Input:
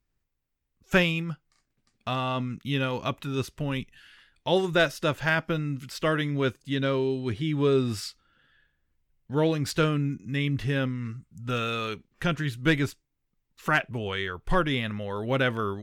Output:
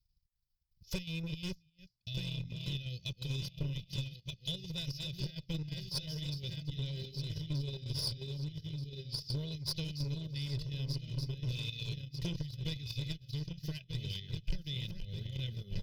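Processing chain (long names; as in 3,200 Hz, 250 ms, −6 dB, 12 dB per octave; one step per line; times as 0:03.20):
feedback delay that plays each chunk backwards 615 ms, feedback 64%, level −4.5 dB
hum removal 52.92 Hz, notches 2
on a send: single-tap delay 338 ms −22 dB
on the sum: brickwall limiter −19 dBFS, peak gain reduction 9.5 dB
high-shelf EQ 6,500 Hz +5.5 dB
transient designer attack +8 dB, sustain −11 dB
Chebyshev band-stop filter 410–2,100 Hz, order 2
square-wave tremolo 2.8 Hz, depth 60%, duty 75%
drawn EQ curve 180 Hz 0 dB, 350 Hz −21 dB, 500 Hz −22 dB, 790 Hz −2 dB, 1,400 Hz −29 dB, 5,100 Hz +8 dB, 8,100 Hz −25 dB, 13,000 Hz −5 dB
asymmetric clip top −35 dBFS, bottom −22.5 dBFS
comb filter 2 ms, depth 73%
level −4 dB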